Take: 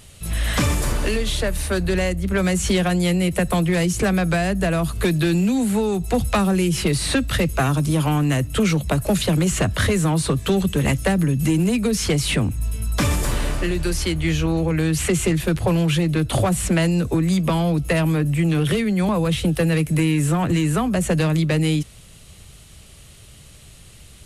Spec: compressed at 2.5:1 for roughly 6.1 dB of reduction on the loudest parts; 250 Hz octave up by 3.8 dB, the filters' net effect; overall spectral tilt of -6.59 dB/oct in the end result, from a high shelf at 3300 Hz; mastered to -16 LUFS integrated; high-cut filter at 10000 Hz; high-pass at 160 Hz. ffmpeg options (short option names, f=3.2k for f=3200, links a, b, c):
-af "highpass=160,lowpass=10k,equalizer=f=250:t=o:g=8,highshelf=f=3.3k:g=-8,acompressor=threshold=-20dB:ratio=2.5,volume=7dB"